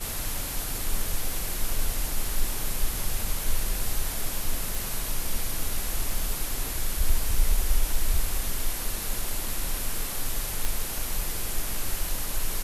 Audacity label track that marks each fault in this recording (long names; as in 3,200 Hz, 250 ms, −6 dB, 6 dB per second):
4.750000	4.750000	click
10.650000	10.650000	click